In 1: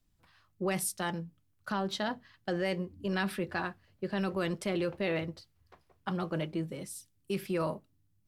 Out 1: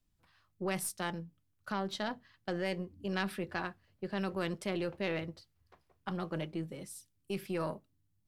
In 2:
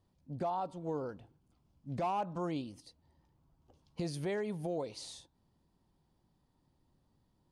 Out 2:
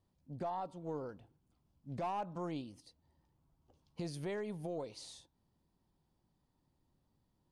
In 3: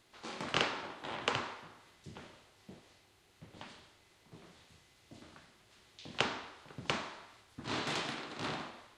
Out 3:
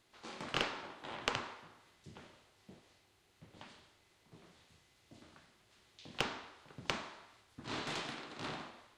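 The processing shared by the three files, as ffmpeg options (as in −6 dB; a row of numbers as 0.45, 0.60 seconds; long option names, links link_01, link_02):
-af "aeval=exprs='0.422*(cos(1*acos(clip(val(0)/0.422,-1,1)))-cos(1*PI/2))+0.133*(cos(2*acos(clip(val(0)/0.422,-1,1)))-cos(2*PI/2))+0.00841*(cos(6*acos(clip(val(0)/0.422,-1,1)))-cos(6*PI/2))+0.0133*(cos(7*acos(clip(val(0)/0.422,-1,1)))-cos(7*PI/2))':channel_layout=same,volume=-2dB"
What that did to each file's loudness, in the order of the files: −3.5, −4.0, −3.5 LU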